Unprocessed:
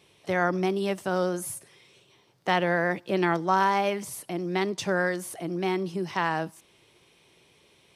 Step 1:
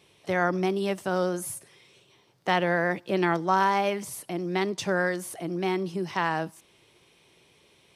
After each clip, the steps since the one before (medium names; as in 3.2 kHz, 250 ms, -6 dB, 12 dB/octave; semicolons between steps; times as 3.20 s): no audible change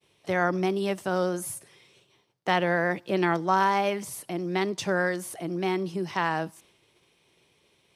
expander -55 dBFS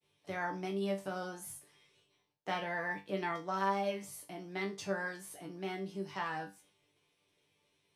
chord resonator G2 fifth, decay 0.24 s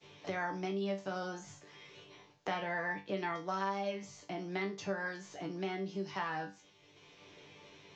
steep low-pass 7.2 kHz 96 dB/octave; three bands compressed up and down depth 70%